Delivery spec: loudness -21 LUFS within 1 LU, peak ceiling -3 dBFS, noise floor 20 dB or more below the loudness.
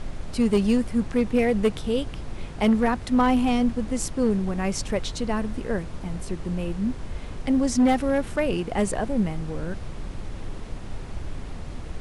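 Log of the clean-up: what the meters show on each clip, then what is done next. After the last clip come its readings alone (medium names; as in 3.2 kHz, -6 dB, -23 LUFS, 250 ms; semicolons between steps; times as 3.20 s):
clipped samples 0.8%; clipping level -14.0 dBFS; noise floor -36 dBFS; noise floor target -45 dBFS; loudness -25.0 LUFS; peak level -14.0 dBFS; loudness target -21.0 LUFS
-> clip repair -14 dBFS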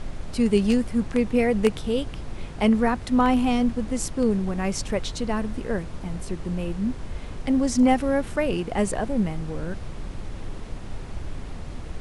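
clipped samples 0.0%; noise floor -36 dBFS; noise floor target -45 dBFS
-> noise print and reduce 9 dB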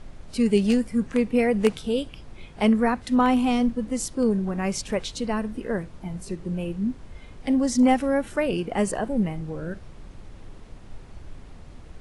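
noise floor -45 dBFS; loudness -24.5 LUFS; peak level -5.0 dBFS; loudness target -21.0 LUFS
-> trim +3.5 dB; peak limiter -3 dBFS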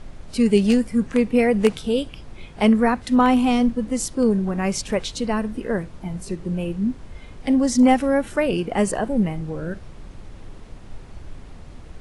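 loudness -21.0 LUFS; peak level -3.0 dBFS; noise floor -41 dBFS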